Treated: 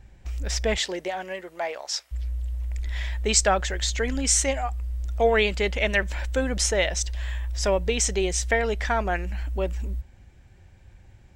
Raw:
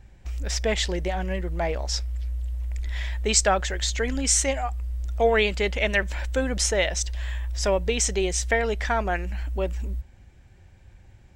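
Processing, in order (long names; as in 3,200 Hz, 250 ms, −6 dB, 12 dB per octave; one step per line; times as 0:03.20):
0:00.76–0:02.11: high-pass filter 250 Hz → 850 Hz 12 dB per octave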